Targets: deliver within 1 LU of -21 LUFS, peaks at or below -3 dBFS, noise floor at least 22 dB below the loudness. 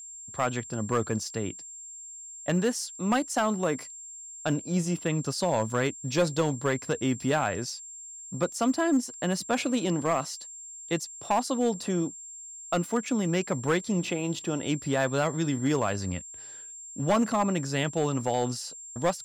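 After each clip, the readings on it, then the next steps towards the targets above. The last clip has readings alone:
clipped samples 0.7%; clipping level -18.0 dBFS; steady tone 7.4 kHz; tone level -41 dBFS; loudness -28.5 LUFS; peak level -18.0 dBFS; loudness target -21.0 LUFS
-> clip repair -18 dBFS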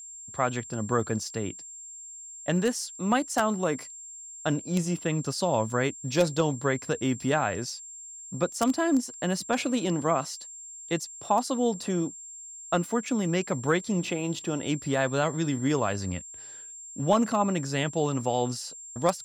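clipped samples 0.0%; steady tone 7.4 kHz; tone level -41 dBFS
-> band-stop 7.4 kHz, Q 30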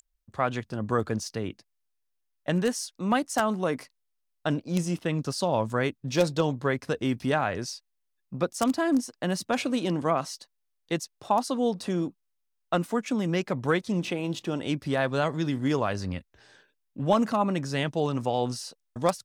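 steady tone not found; loudness -28.5 LUFS; peak level -9.0 dBFS; loudness target -21.0 LUFS
-> trim +7.5 dB; peak limiter -3 dBFS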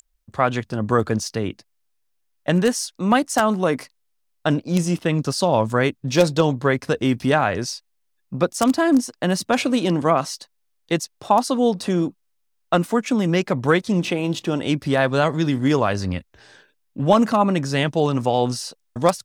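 loudness -21.0 LUFS; peak level -3.0 dBFS; noise floor -69 dBFS

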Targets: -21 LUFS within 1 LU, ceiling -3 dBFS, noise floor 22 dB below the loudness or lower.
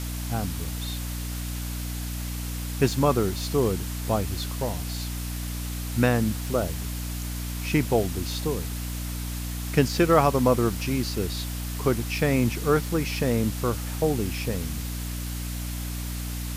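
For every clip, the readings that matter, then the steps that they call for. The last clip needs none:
hum 60 Hz; highest harmonic 300 Hz; hum level -29 dBFS; noise floor -32 dBFS; noise floor target -49 dBFS; loudness -27.0 LUFS; peak level -5.5 dBFS; loudness target -21.0 LUFS
-> hum notches 60/120/180/240/300 Hz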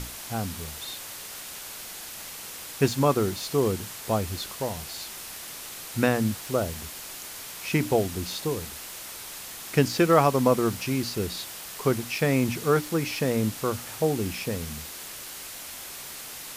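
hum not found; noise floor -40 dBFS; noise floor target -50 dBFS
-> noise print and reduce 10 dB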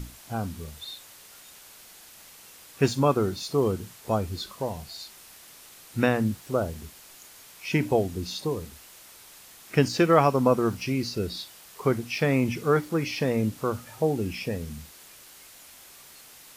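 noise floor -50 dBFS; loudness -26.5 LUFS; peak level -6.0 dBFS; loudness target -21.0 LUFS
-> trim +5.5 dB; peak limiter -3 dBFS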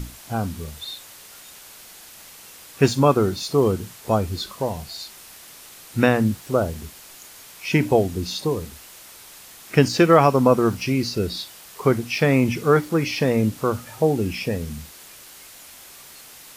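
loudness -21.5 LUFS; peak level -3.0 dBFS; noise floor -44 dBFS

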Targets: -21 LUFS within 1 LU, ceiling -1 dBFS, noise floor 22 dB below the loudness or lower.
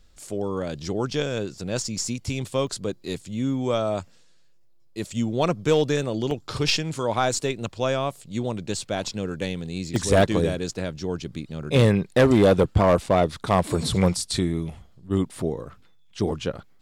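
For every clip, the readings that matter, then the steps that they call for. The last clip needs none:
clipped samples 0.4%; clipping level -11.0 dBFS; dropouts 3; longest dropout 1.3 ms; loudness -24.5 LUFS; peak level -11.0 dBFS; loudness target -21.0 LUFS
-> clip repair -11 dBFS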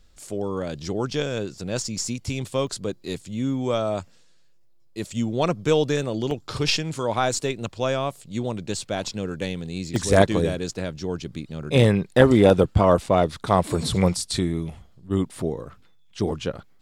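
clipped samples 0.0%; dropouts 3; longest dropout 1.3 ms
-> interpolate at 2.67/6.31/9.96 s, 1.3 ms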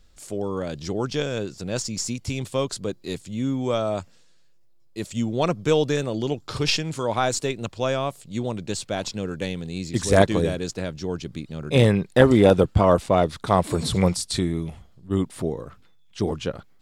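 dropouts 0; loudness -24.0 LUFS; peak level -2.0 dBFS; loudness target -21.0 LUFS
-> trim +3 dB; peak limiter -1 dBFS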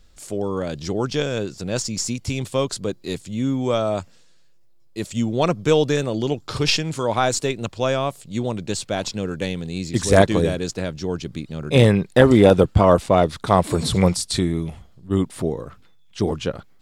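loudness -21.0 LUFS; peak level -1.0 dBFS; noise floor -50 dBFS

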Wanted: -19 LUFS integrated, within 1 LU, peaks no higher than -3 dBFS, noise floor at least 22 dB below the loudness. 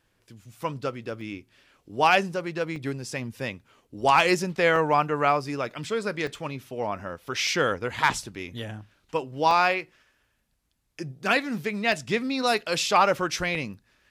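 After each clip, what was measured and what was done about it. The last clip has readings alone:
dropouts 8; longest dropout 1.7 ms; loudness -25.5 LUFS; peak level -8.5 dBFS; loudness target -19.0 LUFS
-> interpolate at 1.21/2.76/4.76/6.27/7.47/9.51/11.92/13.55 s, 1.7 ms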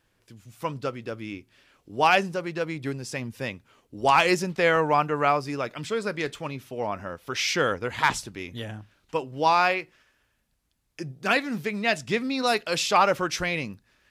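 dropouts 0; loudness -25.5 LUFS; peak level -8.5 dBFS; loudness target -19.0 LUFS
-> trim +6.5 dB; peak limiter -3 dBFS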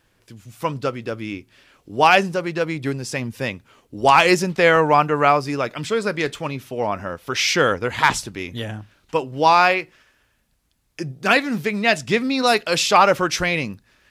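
loudness -19.0 LUFS; peak level -3.0 dBFS; noise floor -65 dBFS

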